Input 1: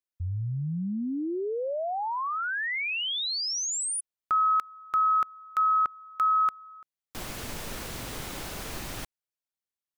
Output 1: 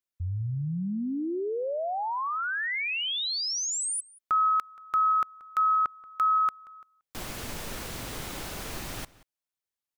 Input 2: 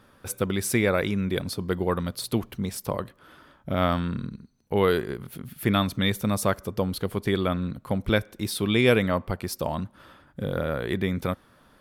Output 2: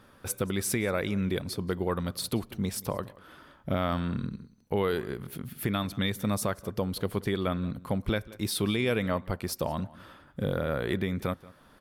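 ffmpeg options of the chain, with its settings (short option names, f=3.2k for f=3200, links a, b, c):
-filter_complex "[0:a]alimiter=limit=-17.5dB:level=0:latency=1:release=401,asplit=2[a][b];[b]adelay=180.8,volume=-20dB,highshelf=f=4k:g=-4.07[c];[a][c]amix=inputs=2:normalize=0"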